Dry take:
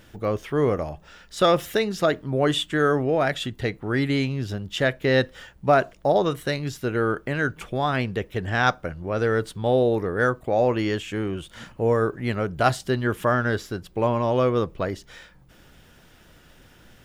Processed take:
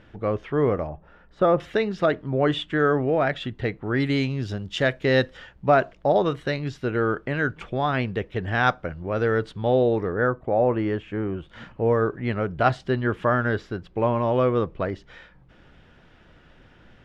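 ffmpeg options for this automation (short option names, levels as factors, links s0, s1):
-af "asetnsamples=n=441:p=0,asendcmd='0.87 lowpass f 1200;1.6 lowpass f 2900;4 lowpass f 6300;5.37 lowpass f 3700;10.12 lowpass f 1600;11.48 lowpass f 2900',lowpass=2600"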